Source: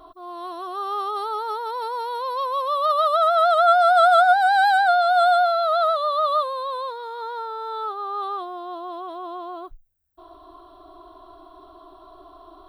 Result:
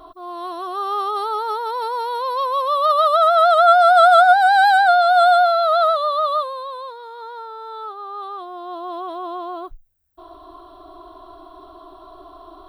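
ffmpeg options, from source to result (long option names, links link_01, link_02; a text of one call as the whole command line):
ffmpeg -i in.wav -af "volume=11.5dB,afade=type=out:start_time=5.82:duration=0.93:silence=0.446684,afade=type=in:start_time=8.34:duration=0.64:silence=0.421697" out.wav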